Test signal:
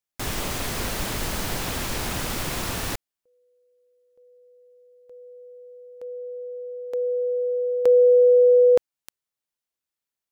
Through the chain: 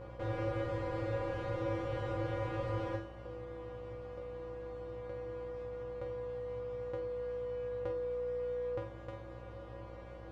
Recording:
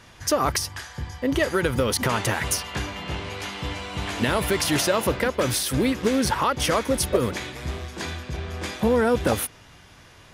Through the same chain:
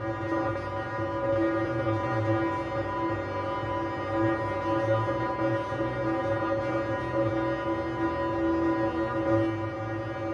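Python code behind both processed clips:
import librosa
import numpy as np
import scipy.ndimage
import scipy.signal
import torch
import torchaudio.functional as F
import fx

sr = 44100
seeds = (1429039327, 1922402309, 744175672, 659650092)

y = fx.bin_compress(x, sr, power=0.2)
y = scipy.signal.sosfilt(scipy.signal.butter(2, 1400.0, 'lowpass', fs=sr, output='sos'), y)
y = fx.comb_fb(y, sr, f0_hz=110.0, decay_s=0.36, harmonics='odd', damping=0.0, mix_pct=100)
y = fx.dmg_buzz(y, sr, base_hz=60.0, harmonics=20, level_db=-53.0, tilt_db=-4, odd_only=False)
y = fx.room_flutter(y, sr, wall_m=8.3, rt60_s=0.33)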